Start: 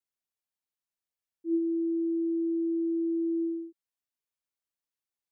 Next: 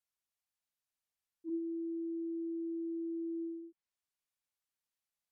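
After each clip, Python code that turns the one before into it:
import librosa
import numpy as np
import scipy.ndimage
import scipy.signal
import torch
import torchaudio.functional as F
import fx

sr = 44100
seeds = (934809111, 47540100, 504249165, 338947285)

y = fx.env_lowpass_down(x, sr, base_hz=340.0, full_db=-31.0)
y = fx.peak_eq(y, sr, hz=340.0, db=-7.0, octaves=1.2)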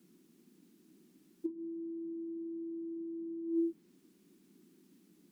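y = fx.over_compress(x, sr, threshold_db=-45.0, ratio=-0.5)
y = fx.dmg_noise_band(y, sr, seeds[0], low_hz=170.0, high_hz=360.0, level_db=-73.0)
y = F.gain(torch.from_numpy(y), 8.5).numpy()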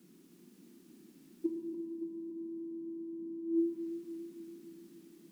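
y = fx.echo_feedback(x, sr, ms=285, feedback_pct=59, wet_db=-9)
y = fx.rev_schroeder(y, sr, rt60_s=1.8, comb_ms=26, drr_db=4.5)
y = F.gain(torch.from_numpy(y), 3.5).numpy()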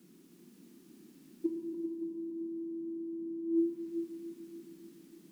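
y = x + 10.0 ** (-10.0 / 20.0) * np.pad(x, (int(395 * sr / 1000.0), 0))[:len(x)]
y = F.gain(torch.from_numpy(y), 1.0).numpy()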